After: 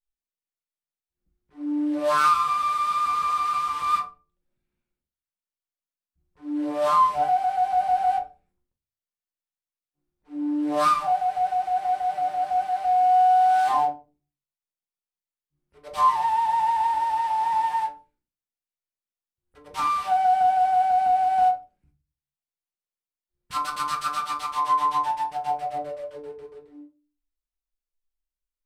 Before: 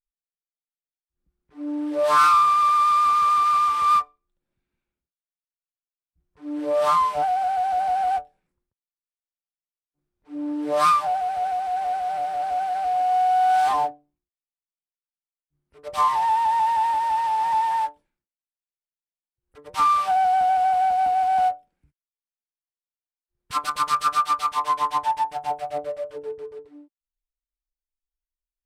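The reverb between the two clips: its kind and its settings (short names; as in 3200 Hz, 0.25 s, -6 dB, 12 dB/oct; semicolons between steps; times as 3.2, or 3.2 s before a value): shoebox room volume 150 m³, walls furnished, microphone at 0.95 m; gain -4 dB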